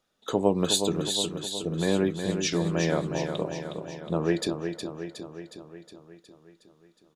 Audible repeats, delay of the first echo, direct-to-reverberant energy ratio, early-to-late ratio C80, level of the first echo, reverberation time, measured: 7, 364 ms, no reverb audible, no reverb audible, −7.0 dB, no reverb audible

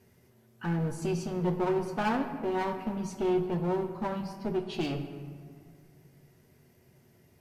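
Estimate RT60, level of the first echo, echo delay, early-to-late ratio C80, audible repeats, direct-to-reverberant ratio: 2.0 s, no echo audible, no echo audible, 10.0 dB, no echo audible, 4.5 dB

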